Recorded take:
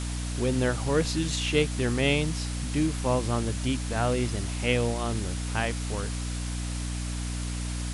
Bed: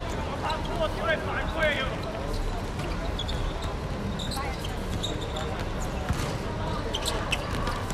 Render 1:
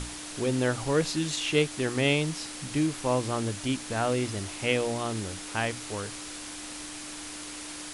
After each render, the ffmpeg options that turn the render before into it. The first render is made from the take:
-af "bandreject=f=60:t=h:w=6,bandreject=f=120:t=h:w=6,bandreject=f=180:t=h:w=6,bandreject=f=240:t=h:w=6"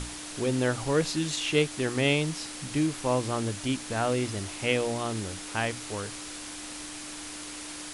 -af anull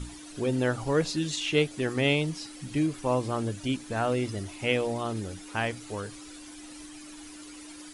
-af "afftdn=nr=12:nf=-40"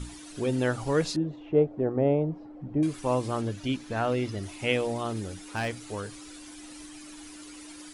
-filter_complex "[0:a]asettb=1/sr,asplit=3[s0][s1][s2];[s0]atrim=end=1.164[s3];[s1]atrim=start=1.16:end=2.83,asetpts=PTS-STARTPTS,afade=t=in:d=0.004:c=qsin,afade=t=out:st=1.666:d=0.004:c=qsin,lowpass=f=670:t=q:w=1.8[s4];[s2]atrim=start=2.826[s5];[s3][s4]acrossfade=d=0.004:c1=hsin:c2=qsin[s6];[s6][s5]acrossfade=d=0.004:c1=qsin:c2=hsin,asettb=1/sr,asplit=3[s7][s8][s9];[s7]atrim=end=3.414[s10];[s8]atrim=start=3.41:end=4.43,asetpts=PTS-STARTPTS,afade=t=in:d=0.004:c=qsin,afade=t=out:st=1.016:d=0.004:c=qsin,equalizer=f=8800:w=1.6:g=-9.5[s11];[s9]atrim=start=4.426[s12];[s10][s11]acrossfade=d=0.004:c1=hsin:c2=qsin[s13];[s13][s12]acrossfade=d=0.004:c1=qsin:c2=hsin,asettb=1/sr,asplit=3[s14][s15][s16];[s14]atrim=end=5.094[s17];[s15]atrim=start=5.09:end=5.84,asetpts=PTS-STARTPTS,afade=t=in:d=0.004:c=qsin,afade=t=out:st=0.746:d=0.004:c=qsin,asoftclip=type=hard:threshold=0.0631[s18];[s16]atrim=start=5.836[s19];[s17][s18]acrossfade=d=0.004:c1=hsin:c2=qsin[s20];[s20][s19]acrossfade=d=0.004:c1=qsin:c2=hsin"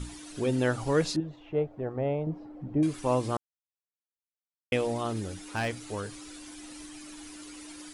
-filter_complex "[0:a]asettb=1/sr,asplit=3[s0][s1][s2];[s0]atrim=end=1.204[s3];[s1]atrim=start=1.2:end=2.27,asetpts=PTS-STARTPTS,afade=t=in:d=0.004:c=qsin,afade=t=out:st=1.066:d=0.004:c=qsin,equalizer=f=290:w=0.7:g=-9[s4];[s2]atrim=start=2.266[s5];[s3][s4]acrossfade=d=0.004:c1=hsin:c2=qsin[s6];[s6][s5]acrossfade=d=0.004:c1=qsin:c2=hsin,asplit=3[s7][s8][s9];[s7]atrim=end=3.37,asetpts=PTS-STARTPTS,afade=t=out:st=3.366:d=0.004:c=hsin[s10];[s8]atrim=start=3.37:end=4.72,asetpts=PTS-STARTPTS,volume=0[s11];[s9]atrim=start=4.72,asetpts=PTS-STARTPTS,afade=t=in:d=0.004:c=hsin[s12];[s10][s11][s12]concat=n=3:v=0:a=1"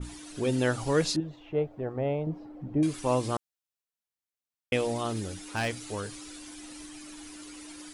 -af "adynamicequalizer=threshold=0.00794:dfrequency=2400:dqfactor=0.7:tfrequency=2400:tqfactor=0.7:attack=5:release=100:ratio=0.375:range=2:mode=boostabove:tftype=highshelf"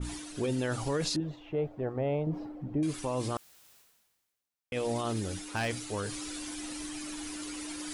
-af "areverse,acompressor=mode=upward:threshold=0.0251:ratio=2.5,areverse,alimiter=limit=0.0708:level=0:latency=1:release=16"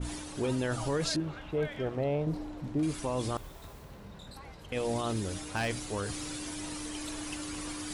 -filter_complex "[1:a]volume=0.141[s0];[0:a][s0]amix=inputs=2:normalize=0"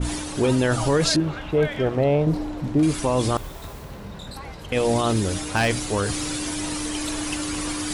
-af "volume=3.55"

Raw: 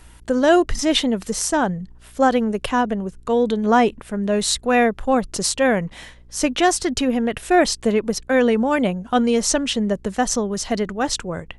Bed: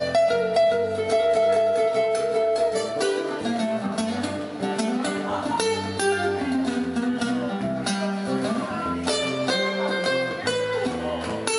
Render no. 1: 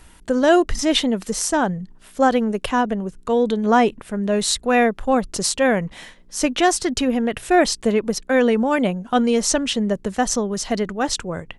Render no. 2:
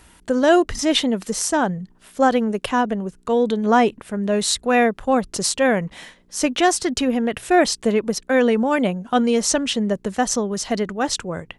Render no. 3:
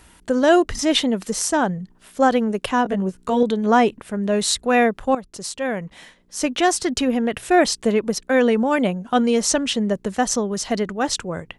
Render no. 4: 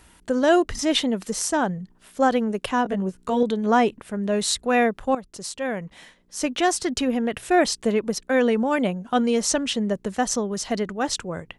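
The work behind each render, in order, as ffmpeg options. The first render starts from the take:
-af "bandreject=f=60:t=h:w=4,bandreject=f=120:t=h:w=4"
-af "highpass=f=62:p=1"
-filter_complex "[0:a]asettb=1/sr,asplit=3[s0][s1][s2];[s0]atrim=end=2.844[s3];[s1]atrim=start=2.84:end=3.43,asetpts=PTS-STARTPTS,afade=t=in:d=0.004:c=qsin,afade=t=out:st=0.586:d=0.004:c=qsin,asplit=2[s4][s5];[s5]adelay=16,volume=0.794[s6];[s4][s6]amix=inputs=2:normalize=0,atrim=end_sample=26019[s7];[s2]atrim=start=3.426[s8];[s3][s7]acrossfade=d=0.004:c1=hsin:c2=qsin[s9];[s9][s8]acrossfade=d=0.004:c1=qsin:c2=hsin,asplit=2[s10][s11];[s10]atrim=end=5.15,asetpts=PTS-STARTPTS,afade=t=out:st=5.146:d=0.004:c=hsin:silence=0.223872[s12];[s11]atrim=start=5.15,asetpts=PTS-STARTPTS,afade=t=in:d=1.76:silence=0.223872[s13];[s12][s13]concat=n=2:v=0:a=1"
-af "volume=0.708"

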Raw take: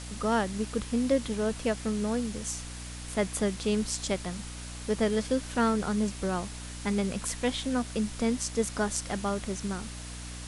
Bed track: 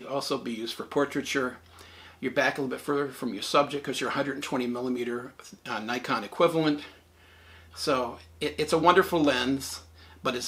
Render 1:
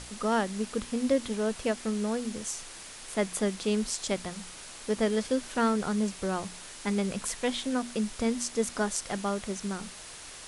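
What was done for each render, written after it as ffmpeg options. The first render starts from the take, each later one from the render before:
-af "bandreject=f=60:t=h:w=6,bandreject=f=120:t=h:w=6,bandreject=f=180:t=h:w=6,bandreject=f=240:t=h:w=6,bandreject=f=300:t=h:w=6"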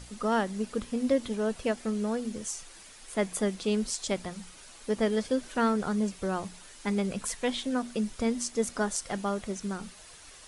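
-af "afftdn=nr=8:nf=-45"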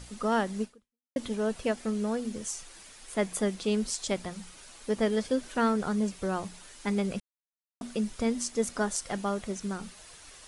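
-filter_complex "[0:a]asplit=4[s0][s1][s2][s3];[s0]atrim=end=1.16,asetpts=PTS-STARTPTS,afade=t=out:st=0.63:d=0.53:c=exp[s4];[s1]atrim=start=1.16:end=7.2,asetpts=PTS-STARTPTS,afade=t=in:d=0.004:c=hsin,afade=t=out:st=6.036:d=0.004:c=hsin[s5];[s2]atrim=start=7.2:end=7.81,asetpts=PTS-STARTPTS,volume=0[s6];[s3]atrim=start=7.81,asetpts=PTS-STARTPTS,afade=t=in:d=0.004:c=hsin[s7];[s4][s5][s6][s7]concat=n=4:v=0:a=1"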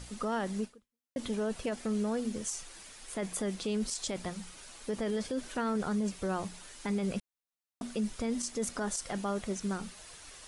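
-af "alimiter=level_in=1.12:limit=0.0631:level=0:latency=1:release=19,volume=0.891"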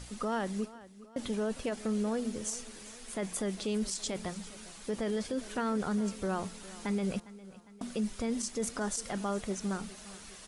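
-af "aecho=1:1:405|810|1215|1620|2025:0.126|0.068|0.0367|0.0198|0.0107"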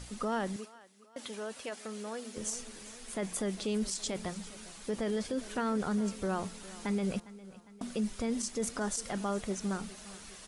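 -filter_complex "[0:a]asettb=1/sr,asplit=3[s0][s1][s2];[s0]atrim=end=0.564[s3];[s1]atrim=start=0.56:end=2.37,asetpts=PTS-STARTPTS,afade=t=in:d=0.004:c=qsin,afade=t=out:st=1.806:d=0.004:c=qsin,highpass=f=850:p=1[s4];[s2]atrim=start=2.366[s5];[s3][s4]acrossfade=d=0.004:c1=hsin:c2=qsin[s6];[s6][s5]acrossfade=d=0.004:c1=qsin:c2=hsin"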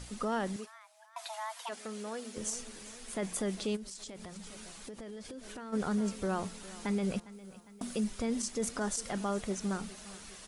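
-filter_complex "[0:a]asplit=3[s0][s1][s2];[s0]afade=t=out:st=0.66:d=0.02[s3];[s1]afreqshift=440,afade=t=in:st=0.66:d=0.02,afade=t=out:st=1.68:d=0.02[s4];[s2]afade=t=in:st=1.68:d=0.02[s5];[s3][s4][s5]amix=inputs=3:normalize=0,asplit=3[s6][s7][s8];[s6]afade=t=out:st=3.75:d=0.02[s9];[s7]acompressor=threshold=0.00794:ratio=6:attack=3.2:release=140:knee=1:detection=peak,afade=t=in:st=3.75:d=0.02,afade=t=out:st=5.72:d=0.02[s10];[s8]afade=t=in:st=5.72:d=0.02[s11];[s9][s10][s11]amix=inputs=3:normalize=0,asettb=1/sr,asplit=3[s12][s13][s14];[s12]atrim=end=7.324[s15];[s13]atrim=start=7.32:end=8.04,asetpts=PTS-STARTPTS,afade=t=in:d=0.004:c=qsin,afade=t=out:st=0.716:d=0.004:c=qsin,highshelf=f=8700:g=10.5[s16];[s14]atrim=start=8.036[s17];[s15][s16]acrossfade=d=0.004:c1=hsin:c2=qsin[s18];[s18][s17]acrossfade=d=0.004:c1=qsin:c2=hsin"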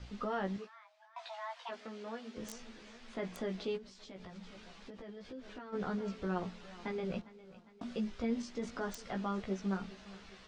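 -filter_complex "[0:a]flanger=delay=15.5:depth=2.1:speed=0.2,acrossover=split=380|1400|4900[s0][s1][s2][s3];[s3]acrusher=bits=4:mix=0:aa=0.000001[s4];[s0][s1][s2][s4]amix=inputs=4:normalize=0"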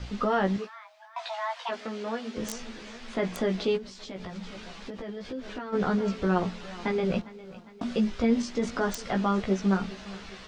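-af "volume=3.55"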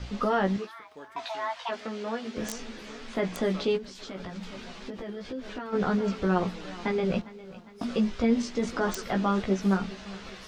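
-filter_complex "[1:a]volume=0.0841[s0];[0:a][s0]amix=inputs=2:normalize=0"

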